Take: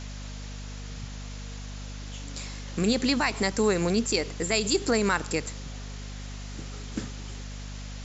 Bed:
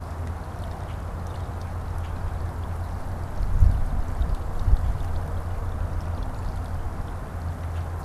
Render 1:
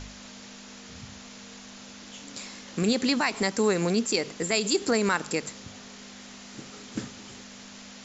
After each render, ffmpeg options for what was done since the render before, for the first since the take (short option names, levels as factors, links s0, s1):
-af "bandreject=f=50:t=h:w=4,bandreject=f=100:t=h:w=4,bandreject=f=150:t=h:w=4"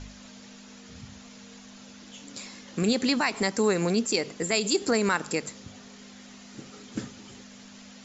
-af "afftdn=nr=6:nf=-46"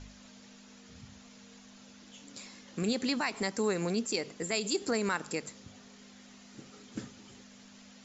-af "volume=0.473"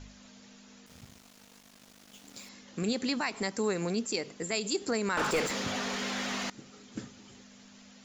-filter_complex "[0:a]asettb=1/sr,asplit=3[s0][s1][s2];[s0]atrim=end=0.864[s3];[s1]atrim=start=0.86:end=2.49,asetpts=PTS-STARTPTS,afade=t=in:d=0.004:c=qsin,afade=t=out:st=1.626:d=0.004:c=qsin,aeval=exprs='val(0)*gte(abs(val(0)),0.00299)':c=same[s4];[s2]atrim=start=2.486[s5];[s3][s4]acrossfade=d=0.004:c1=hsin:c2=qsin[s6];[s6][s5]acrossfade=d=0.004:c1=qsin:c2=hsin,asettb=1/sr,asplit=3[s7][s8][s9];[s7]atrim=end=5.174[s10];[s8]atrim=start=5.17:end=6.5,asetpts=PTS-STARTPTS,afade=t=in:d=0.004:c=qsin,afade=t=out:st=1.326:d=0.004:c=qsin,asplit=2[s11][s12];[s12]highpass=f=720:p=1,volume=63.1,asoftclip=type=tanh:threshold=0.112[s13];[s11][s13]amix=inputs=2:normalize=0,lowpass=f=2100:p=1,volume=0.501[s14];[s9]atrim=start=6.496[s15];[s10][s14]acrossfade=d=0.004:c1=hsin:c2=qsin[s16];[s16][s15]acrossfade=d=0.004:c1=qsin:c2=hsin"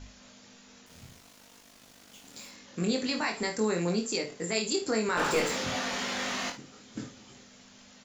-filter_complex "[0:a]asplit=2[s0][s1];[s1]adelay=50,volume=0.237[s2];[s0][s2]amix=inputs=2:normalize=0,aecho=1:1:23|57|75:0.631|0.266|0.141"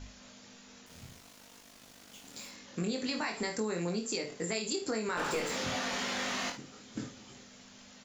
-af "acompressor=threshold=0.0282:ratio=4"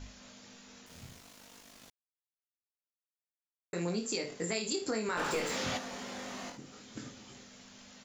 -filter_complex "[0:a]asettb=1/sr,asplit=3[s0][s1][s2];[s0]atrim=end=5.774[s3];[s1]atrim=start=5.77:end=7.06,asetpts=PTS-STARTPTS,afade=t=in:d=0.004:c=qsin,afade=t=out:st=1.286:d=0.004:c=qsin,acrossover=split=950|6400[s4][s5][s6];[s4]acompressor=threshold=0.00794:ratio=4[s7];[s5]acompressor=threshold=0.00355:ratio=4[s8];[s6]acompressor=threshold=0.002:ratio=4[s9];[s7][s8][s9]amix=inputs=3:normalize=0[s10];[s2]atrim=start=7.056[s11];[s3][s10]acrossfade=d=0.004:c1=hsin:c2=qsin[s12];[s12][s11]acrossfade=d=0.004:c1=qsin:c2=hsin,asplit=3[s13][s14][s15];[s13]atrim=end=1.9,asetpts=PTS-STARTPTS,afade=t=out:st=1.896:d=0.004:c=hsin[s16];[s14]atrim=start=1.9:end=3.73,asetpts=PTS-STARTPTS,volume=0[s17];[s15]atrim=start=3.73,asetpts=PTS-STARTPTS,afade=t=in:d=0.004:c=hsin[s18];[s16][s17][s18]concat=n=3:v=0:a=1"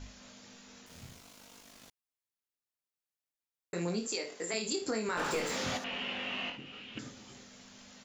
-filter_complex "[0:a]asettb=1/sr,asplit=3[s0][s1][s2];[s0]atrim=end=1.144[s3];[s1]atrim=start=1.14:end=1.67,asetpts=PTS-STARTPTS,afade=t=in:d=0.004:c=qsin,afade=t=out:st=0.526:d=0.004:c=qsin,bandreject=f=1800:w=12[s4];[s2]atrim=start=1.666[s5];[s3][s4]acrossfade=d=0.004:c1=hsin:c2=qsin[s6];[s6][s5]acrossfade=d=0.004:c1=qsin:c2=hsin,asettb=1/sr,asplit=3[s7][s8][s9];[s7]atrim=end=4.074[s10];[s8]atrim=start=4.07:end=4.54,asetpts=PTS-STARTPTS,afade=t=in:d=0.004:c=qsin,afade=t=out:st=0.466:d=0.004:c=qsin,highpass=370[s11];[s9]atrim=start=4.536[s12];[s10][s11]acrossfade=d=0.004:c1=hsin:c2=qsin[s13];[s13][s12]acrossfade=d=0.004:c1=qsin:c2=hsin,asettb=1/sr,asplit=3[s14][s15][s16];[s14]atrim=end=5.844[s17];[s15]atrim=start=5.84:end=6.99,asetpts=PTS-STARTPTS,afade=t=in:d=0.004:c=qsin,afade=t=out:st=1.146:d=0.004:c=qsin,lowpass=f=2800:t=q:w=9.3[s18];[s16]atrim=start=6.986[s19];[s17][s18]acrossfade=d=0.004:c1=hsin:c2=qsin[s20];[s20][s19]acrossfade=d=0.004:c1=qsin:c2=hsin"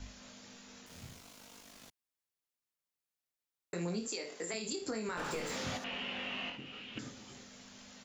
-filter_complex "[0:a]acrossover=split=180[s0][s1];[s1]acompressor=threshold=0.0126:ratio=2.5[s2];[s0][s2]amix=inputs=2:normalize=0"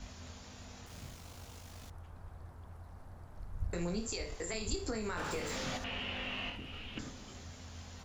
-filter_complex "[1:a]volume=0.0944[s0];[0:a][s0]amix=inputs=2:normalize=0"